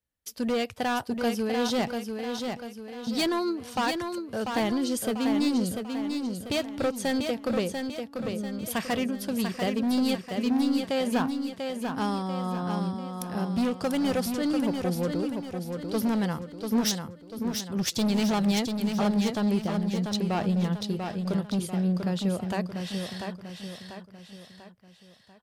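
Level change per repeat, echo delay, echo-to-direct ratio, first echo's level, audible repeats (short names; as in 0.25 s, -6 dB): -7.0 dB, 0.692 s, -4.5 dB, -5.5 dB, 4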